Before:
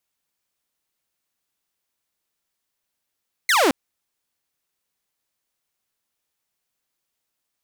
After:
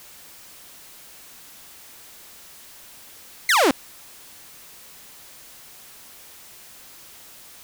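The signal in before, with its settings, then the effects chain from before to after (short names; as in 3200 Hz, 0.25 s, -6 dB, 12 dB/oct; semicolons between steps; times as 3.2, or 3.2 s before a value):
laser zap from 2200 Hz, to 240 Hz, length 0.22 s saw, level -12 dB
zero-crossing step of -39 dBFS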